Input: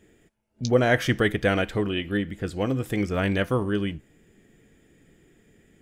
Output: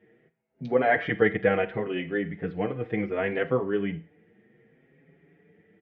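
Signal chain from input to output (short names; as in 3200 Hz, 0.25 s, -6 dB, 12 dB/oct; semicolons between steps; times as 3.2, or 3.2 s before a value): speaker cabinet 130–2700 Hz, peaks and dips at 160 Hz +9 dB, 460 Hz +8 dB, 760 Hz +6 dB, 2000 Hz +7 dB; Schroeder reverb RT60 0.32 s, combs from 33 ms, DRR 14.5 dB; endless flanger 6.1 ms +0.67 Hz; gain -2 dB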